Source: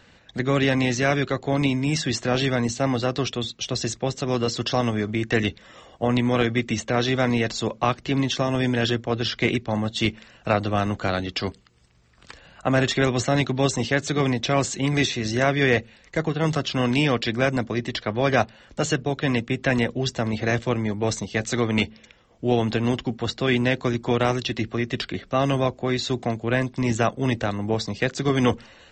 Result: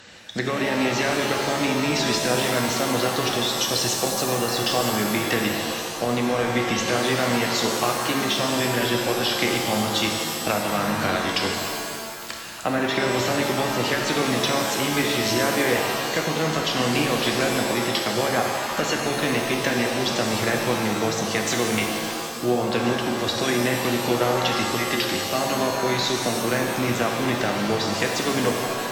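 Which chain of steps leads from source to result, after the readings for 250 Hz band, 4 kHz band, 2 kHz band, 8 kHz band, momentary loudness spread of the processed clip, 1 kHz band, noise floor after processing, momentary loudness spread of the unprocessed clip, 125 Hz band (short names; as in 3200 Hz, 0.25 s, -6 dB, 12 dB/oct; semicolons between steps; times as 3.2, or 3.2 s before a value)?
-1.0 dB, +5.0 dB, +2.5 dB, +7.5 dB, 3 LU, +4.0 dB, -30 dBFS, 6 LU, -5.5 dB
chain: HPF 200 Hz 6 dB/oct; treble ducked by the level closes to 1900 Hz, closed at -17.5 dBFS; high shelf 4300 Hz +10 dB; compressor 2.5:1, threshold -31 dBFS, peak gain reduction 10.5 dB; shimmer reverb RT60 2 s, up +7 st, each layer -2 dB, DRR 1.5 dB; gain +5.5 dB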